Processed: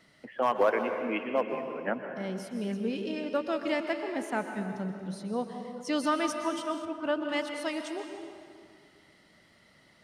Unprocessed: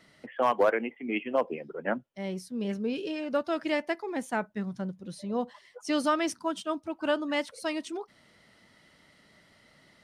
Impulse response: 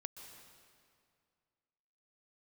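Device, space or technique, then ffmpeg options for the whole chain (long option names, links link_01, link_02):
stairwell: -filter_complex "[1:a]atrim=start_sample=2205[link_01];[0:a][link_01]afir=irnorm=-1:irlink=0,asettb=1/sr,asplit=3[link_02][link_03][link_04];[link_02]atrim=end=6.854[link_05];[link_03]atrim=start=6.85:end=7.29,asetpts=PTS-STARTPTS,afade=type=in:duration=0.004:curve=qsin,afade=type=out:start_time=0.436:duration=0.004:curve=qsin,highshelf=frequency=3900:gain=-11.5[link_06];[link_04]atrim=start=7.286[link_07];[link_05][link_06]acrossfade=duration=0.004:curve1=hsin:curve2=qsin[link_08];[link_08][link_07]acrossfade=duration=0.004:curve1=qsin:curve2=hsin,volume=3dB"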